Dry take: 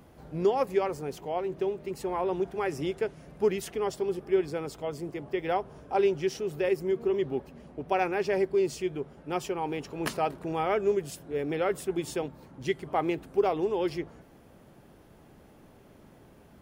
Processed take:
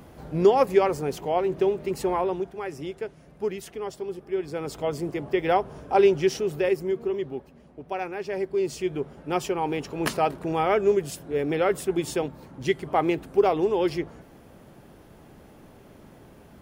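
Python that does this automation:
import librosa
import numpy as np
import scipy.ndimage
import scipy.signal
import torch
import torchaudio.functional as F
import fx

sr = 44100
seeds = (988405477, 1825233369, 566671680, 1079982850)

y = fx.gain(x, sr, db=fx.line((2.09, 7.0), (2.54, -3.0), (4.36, -3.0), (4.78, 6.5), (6.34, 6.5), (7.52, -4.0), (8.24, -4.0), (8.99, 5.0)))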